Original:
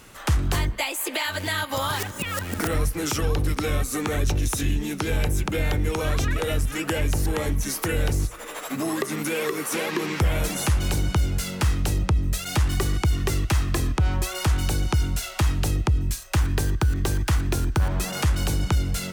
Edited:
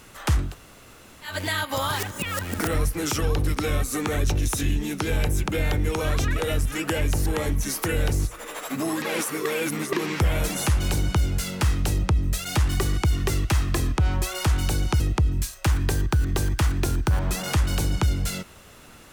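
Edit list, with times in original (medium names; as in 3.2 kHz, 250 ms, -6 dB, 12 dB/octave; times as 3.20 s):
0.47–1.29 s: room tone, crossfade 0.16 s
9.02–9.93 s: reverse
15.00–15.69 s: delete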